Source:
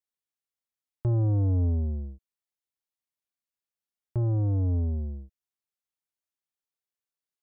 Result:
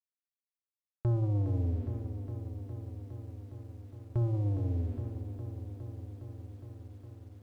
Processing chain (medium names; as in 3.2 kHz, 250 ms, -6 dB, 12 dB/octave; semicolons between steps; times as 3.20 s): reverb removal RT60 1.6 s; dynamic bell 810 Hz, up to -3 dB, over -48 dBFS, Q 1.2; crossover distortion -55 dBFS; bucket-brigade echo 166 ms, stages 1024, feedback 45%, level -22 dB; spring tank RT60 1.5 s, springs 58 ms, chirp 75 ms, DRR 7 dB; saturation -23.5 dBFS, distortion -19 dB; bit-crushed delay 411 ms, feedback 80%, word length 11-bit, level -9 dB